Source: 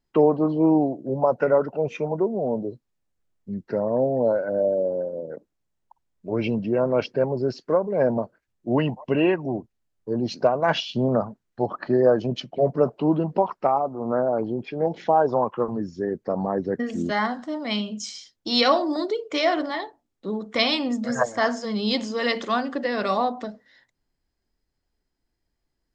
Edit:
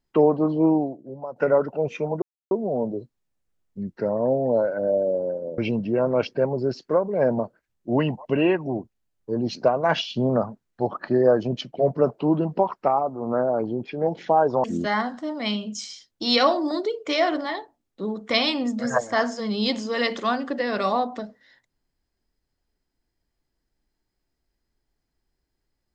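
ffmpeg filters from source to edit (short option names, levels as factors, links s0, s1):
-filter_complex "[0:a]asplit=5[s0][s1][s2][s3][s4];[s0]atrim=end=1.36,asetpts=PTS-STARTPTS,afade=t=out:st=0.66:d=0.7:c=qua:silence=0.188365[s5];[s1]atrim=start=1.36:end=2.22,asetpts=PTS-STARTPTS,afade=t=in:d=0.004:c=hsin:silence=0.188365,afade=t=out:st=0.856:d=0.004:c=hsin,apad=pad_dur=0.29[s6];[s2]atrim=start=2.22:end=5.292,asetpts=PTS-STARTPTS,afade=t=in:d=0.004:c=hsin[s7];[s3]atrim=start=6.368:end=15.432[s8];[s4]atrim=start=16.888[s9];[s5][s6][s7]concat=n=3:v=0:a=1[s10];[s10][s8]acrossfade=d=0.004:c1=hsin:c2=hsin[s11];[s11][s9]acrossfade=d=0.004:c1=hsin:c2=hsin"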